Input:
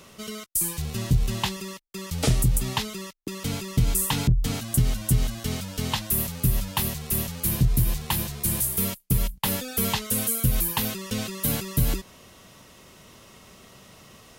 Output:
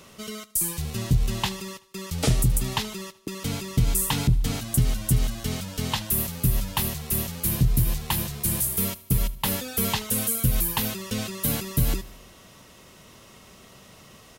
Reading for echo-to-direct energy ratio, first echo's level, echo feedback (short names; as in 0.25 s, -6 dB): -18.0 dB, -20.0 dB, 58%